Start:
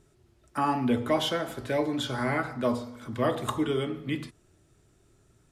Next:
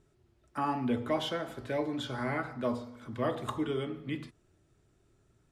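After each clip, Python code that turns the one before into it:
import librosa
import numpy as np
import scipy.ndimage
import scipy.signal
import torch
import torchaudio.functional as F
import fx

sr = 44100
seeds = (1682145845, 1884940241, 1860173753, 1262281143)

y = fx.high_shelf(x, sr, hz=6200.0, db=-8.0)
y = y * librosa.db_to_amplitude(-5.0)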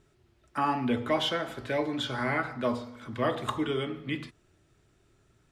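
y = fx.peak_eq(x, sr, hz=2600.0, db=5.5, octaves=2.6)
y = y * librosa.db_to_amplitude(2.0)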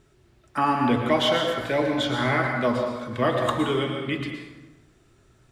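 y = fx.rev_plate(x, sr, seeds[0], rt60_s=1.1, hf_ratio=0.7, predelay_ms=100, drr_db=3.0)
y = y * librosa.db_to_amplitude(5.0)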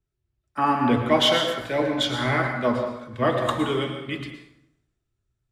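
y = fx.band_widen(x, sr, depth_pct=70)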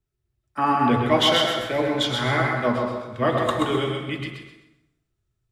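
y = fx.echo_feedback(x, sr, ms=129, feedback_pct=29, wet_db=-5.0)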